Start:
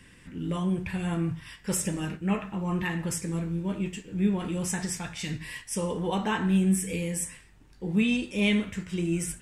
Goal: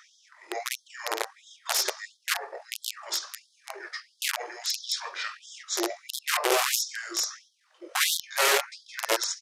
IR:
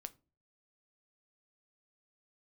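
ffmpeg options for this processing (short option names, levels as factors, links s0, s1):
-af "aeval=exprs='(mod(11.2*val(0)+1,2)-1)/11.2':c=same,asetrate=29433,aresample=44100,atempo=1.49831,afftfilt=real='re*gte(b*sr/1024,310*pow(3200/310,0.5+0.5*sin(2*PI*1.5*pts/sr)))':imag='im*gte(b*sr/1024,310*pow(3200/310,0.5+0.5*sin(2*PI*1.5*pts/sr)))':win_size=1024:overlap=0.75,volume=1.78"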